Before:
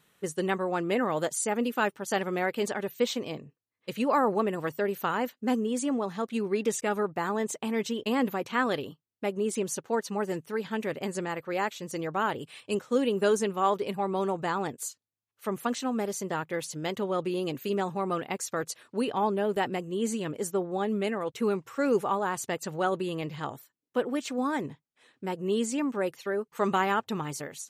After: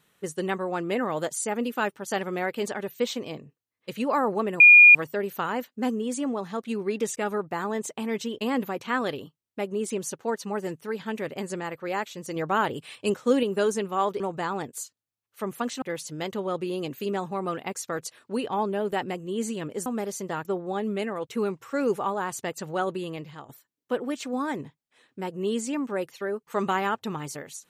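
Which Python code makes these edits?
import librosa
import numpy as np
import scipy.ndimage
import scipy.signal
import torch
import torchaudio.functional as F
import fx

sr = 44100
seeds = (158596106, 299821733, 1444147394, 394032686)

y = fx.edit(x, sr, fx.insert_tone(at_s=4.6, length_s=0.35, hz=2430.0, db=-8.0),
    fx.clip_gain(start_s=12.01, length_s=1.07, db=4.0),
    fx.cut(start_s=13.85, length_s=0.4),
    fx.move(start_s=15.87, length_s=0.59, to_s=20.5),
    fx.fade_out_to(start_s=22.88, length_s=0.66, curve='qsin', floor_db=-13.5), tone=tone)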